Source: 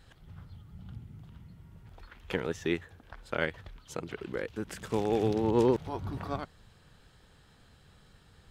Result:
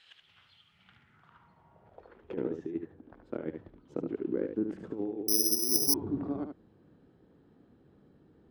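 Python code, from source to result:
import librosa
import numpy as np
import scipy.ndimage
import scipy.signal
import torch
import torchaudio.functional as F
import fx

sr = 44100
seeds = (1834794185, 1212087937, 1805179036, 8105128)

y = fx.spec_repair(x, sr, seeds[0], start_s=5.42, length_s=0.66, low_hz=370.0, high_hz=810.0, source='both')
y = fx.over_compress(y, sr, threshold_db=-33.0, ratio=-0.5)
y = fx.filter_sweep_bandpass(y, sr, from_hz=2900.0, to_hz=300.0, start_s=0.66, end_s=2.43, q=2.8)
y = y + 10.0 ** (-6.5 / 20.0) * np.pad(y, (int(74 * sr / 1000.0), 0))[:len(y)]
y = fx.resample_bad(y, sr, factor=8, down='filtered', up='zero_stuff', at=(5.28, 5.94))
y = y * librosa.db_to_amplitude(6.5)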